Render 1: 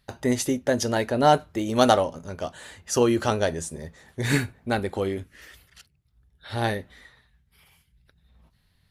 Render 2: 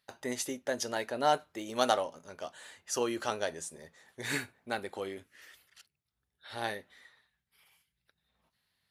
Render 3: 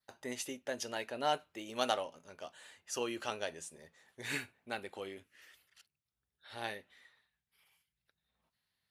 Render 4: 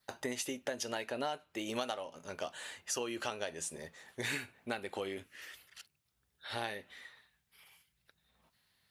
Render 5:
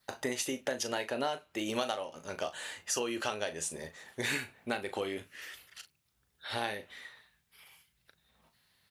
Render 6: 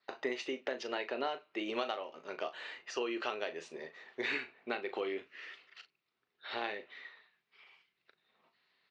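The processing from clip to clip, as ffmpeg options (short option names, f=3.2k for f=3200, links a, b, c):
-af "highpass=f=620:p=1,volume=-6.5dB"
-af "adynamicequalizer=threshold=0.00158:dfrequency=2700:dqfactor=2.8:tfrequency=2700:tqfactor=2.8:attack=5:release=100:ratio=0.375:range=4:mode=boostabove:tftype=bell,volume=-6dB"
-af "acompressor=threshold=-44dB:ratio=8,volume=10dB"
-filter_complex "[0:a]asplit=2[a][b];[b]adelay=38,volume=-11dB[c];[a][c]amix=inputs=2:normalize=0,volume=3.5dB"
-af "highpass=380,equalizer=f=380:t=q:w=4:g=4,equalizer=f=560:t=q:w=4:g=-5,equalizer=f=850:t=q:w=4:g=-5,equalizer=f=1.6k:t=q:w=4:g=-5,equalizer=f=3.3k:t=q:w=4:g=-6,lowpass=f=3.8k:w=0.5412,lowpass=f=3.8k:w=1.3066,volume=1dB"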